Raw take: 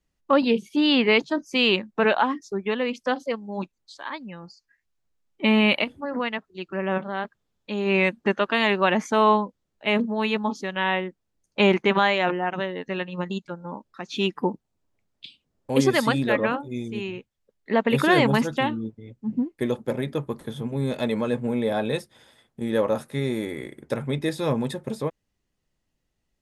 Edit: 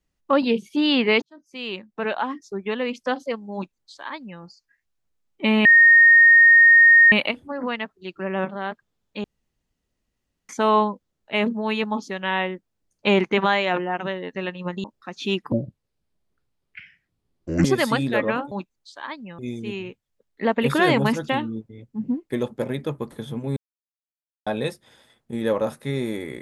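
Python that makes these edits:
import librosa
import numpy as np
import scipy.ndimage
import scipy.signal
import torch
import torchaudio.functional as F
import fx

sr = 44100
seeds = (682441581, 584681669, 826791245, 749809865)

y = fx.edit(x, sr, fx.fade_in_span(start_s=1.22, length_s=1.66),
    fx.duplicate(start_s=3.54, length_s=0.87, to_s=16.67),
    fx.insert_tone(at_s=5.65, length_s=1.47, hz=1850.0, db=-8.5),
    fx.room_tone_fill(start_s=7.77, length_s=1.25),
    fx.cut(start_s=13.37, length_s=0.39),
    fx.speed_span(start_s=14.44, length_s=1.36, speed=0.64),
    fx.silence(start_s=20.85, length_s=0.9), tone=tone)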